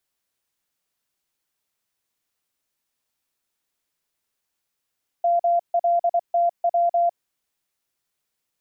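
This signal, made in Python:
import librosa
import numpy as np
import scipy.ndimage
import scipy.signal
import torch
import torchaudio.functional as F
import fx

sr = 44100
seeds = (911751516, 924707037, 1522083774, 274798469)

y = fx.morse(sr, text='MLTW', wpm=24, hz=690.0, level_db=-16.0)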